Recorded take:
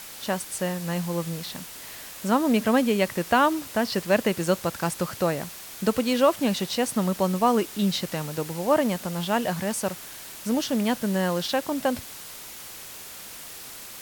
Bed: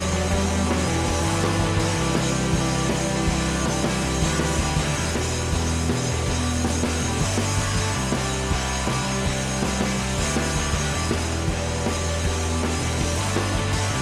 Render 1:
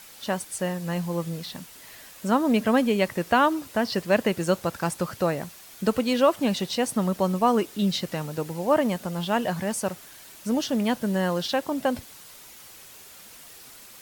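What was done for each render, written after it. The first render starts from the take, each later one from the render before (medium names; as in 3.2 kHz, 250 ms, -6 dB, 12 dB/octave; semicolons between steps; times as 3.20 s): noise reduction 7 dB, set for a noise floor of -41 dBFS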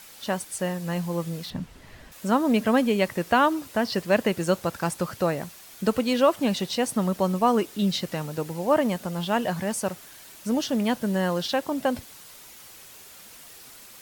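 1.50–2.12 s: RIAA curve playback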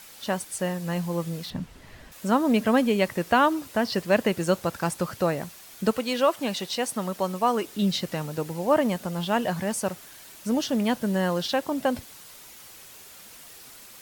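5.91–7.64 s: bass shelf 310 Hz -9.5 dB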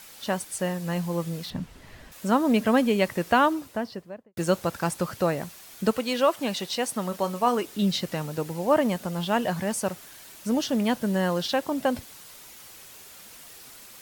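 3.34–4.37 s: studio fade out; 7.09–7.59 s: doubling 29 ms -11.5 dB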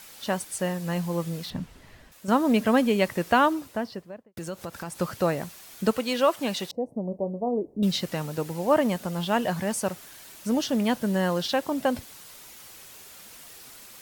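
1.53–2.28 s: fade out, to -8.5 dB; 4.07–5.01 s: compression 3:1, threshold -34 dBFS; 6.71–7.83 s: inverse Chebyshev low-pass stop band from 1.3 kHz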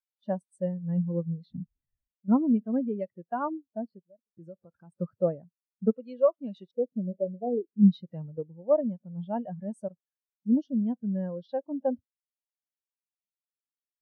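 gain riding within 4 dB 0.5 s; spectral contrast expander 2.5:1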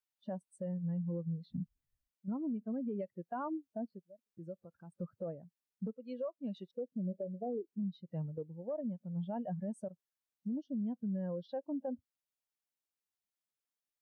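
compression 10:1, threshold -31 dBFS, peak gain reduction 17.5 dB; peak limiter -31.5 dBFS, peak gain reduction 9.5 dB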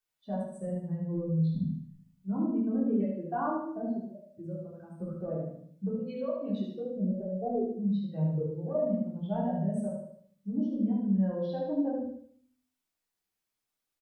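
feedback delay 75 ms, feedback 41%, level -4 dB; simulated room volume 380 m³, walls furnished, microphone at 3.5 m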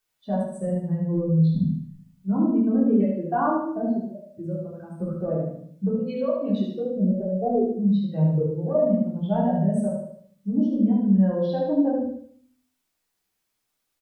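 trim +8.5 dB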